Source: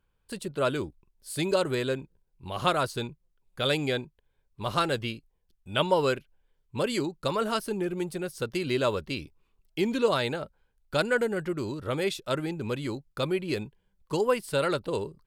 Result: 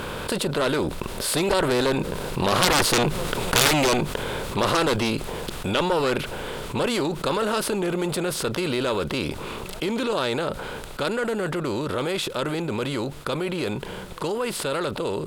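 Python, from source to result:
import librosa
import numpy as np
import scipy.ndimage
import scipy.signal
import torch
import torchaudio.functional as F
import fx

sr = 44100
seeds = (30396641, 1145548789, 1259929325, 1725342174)

y = fx.bin_compress(x, sr, power=0.6)
y = fx.doppler_pass(y, sr, speed_mps=5, closest_m=1.4, pass_at_s=3.31)
y = fx.cheby_harmonics(y, sr, harmonics=(3, 6, 7, 8), levels_db=(-12, -7, -14, -7), full_scale_db=-13.5)
y = fx.env_flatten(y, sr, amount_pct=70)
y = F.gain(torch.from_numpy(y), 8.0).numpy()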